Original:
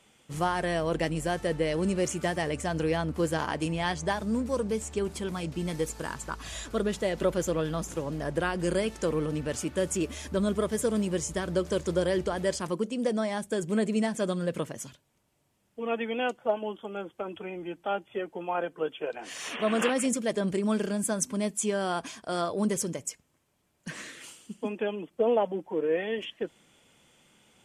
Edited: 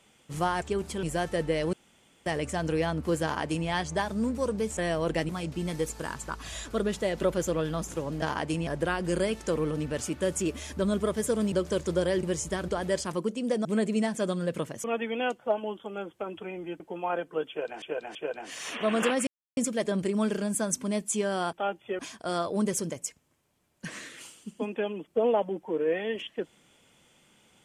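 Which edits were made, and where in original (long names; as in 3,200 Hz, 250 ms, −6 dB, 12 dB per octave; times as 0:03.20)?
0:00.62–0:01.14: swap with 0:04.88–0:05.29
0:01.84–0:02.37: fill with room tone
0:03.34–0:03.79: duplicate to 0:08.22
0:11.07–0:11.52: move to 0:12.23
0:13.20–0:13.65: remove
0:14.84–0:15.83: remove
0:17.79–0:18.25: move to 0:22.02
0:18.94–0:19.27: repeat, 3 plays
0:20.06: splice in silence 0.30 s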